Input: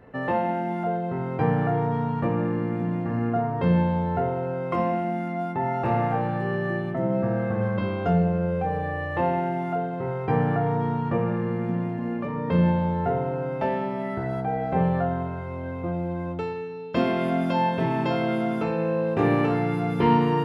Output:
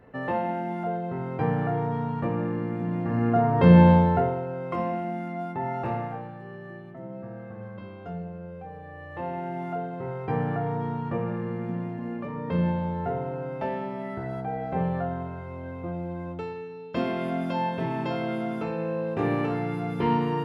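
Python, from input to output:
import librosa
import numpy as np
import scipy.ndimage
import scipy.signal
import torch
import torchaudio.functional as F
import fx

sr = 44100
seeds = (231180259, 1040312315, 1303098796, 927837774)

y = fx.gain(x, sr, db=fx.line((2.8, -3.0), (3.91, 8.5), (4.46, -4.0), (5.82, -4.0), (6.37, -14.5), (8.84, -14.5), (9.63, -4.5)))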